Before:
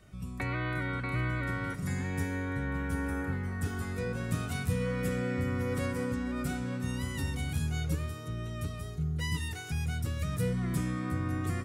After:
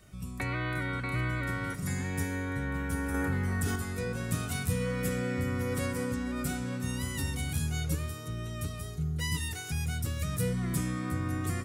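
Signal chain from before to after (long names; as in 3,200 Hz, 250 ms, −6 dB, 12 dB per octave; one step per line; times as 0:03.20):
high-shelf EQ 5,000 Hz +8.5 dB
0:03.14–0:03.76: envelope flattener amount 70%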